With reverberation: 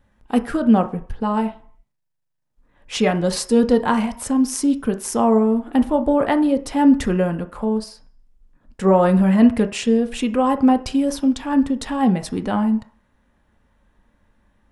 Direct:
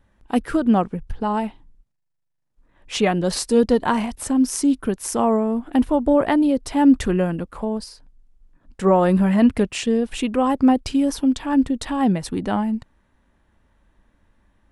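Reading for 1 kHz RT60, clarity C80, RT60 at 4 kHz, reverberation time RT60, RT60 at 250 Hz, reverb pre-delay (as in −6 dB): 0.55 s, 19.5 dB, 0.55 s, 0.50 s, 0.40 s, 3 ms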